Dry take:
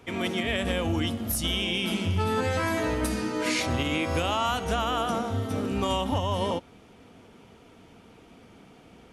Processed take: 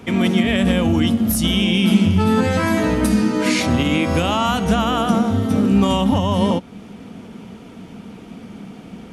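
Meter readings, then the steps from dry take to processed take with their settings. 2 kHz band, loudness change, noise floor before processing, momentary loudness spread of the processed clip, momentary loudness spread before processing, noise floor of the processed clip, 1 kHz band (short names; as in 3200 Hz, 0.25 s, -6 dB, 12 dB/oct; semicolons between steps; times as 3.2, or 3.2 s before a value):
+6.5 dB, +10.0 dB, -54 dBFS, 21 LU, 3 LU, -39 dBFS, +6.5 dB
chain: bell 200 Hz +12 dB 0.75 oct; in parallel at -2.5 dB: compressor, threshold -34 dBFS, peak gain reduction 18 dB; on the sum: gain +5 dB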